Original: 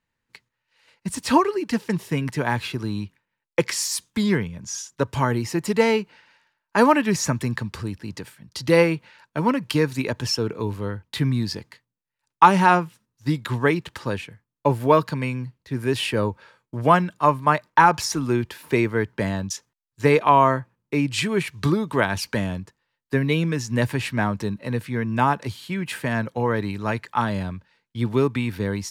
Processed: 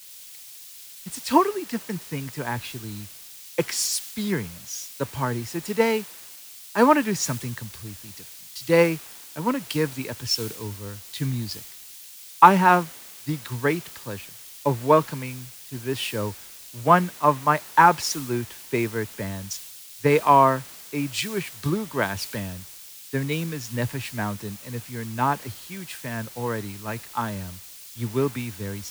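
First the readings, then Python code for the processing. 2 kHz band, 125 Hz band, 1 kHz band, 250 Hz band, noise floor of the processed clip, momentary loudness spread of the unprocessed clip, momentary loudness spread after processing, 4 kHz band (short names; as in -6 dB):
-3.0 dB, -4.5 dB, -0.5 dB, -4.0 dB, -44 dBFS, 14 LU, 20 LU, -1.5 dB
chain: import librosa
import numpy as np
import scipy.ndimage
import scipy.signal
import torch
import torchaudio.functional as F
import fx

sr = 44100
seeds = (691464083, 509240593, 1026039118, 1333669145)

y = fx.quant_dither(x, sr, seeds[0], bits=6, dither='triangular')
y = fx.band_widen(y, sr, depth_pct=70)
y = y * librosa.db_to_amplitude(-5.0)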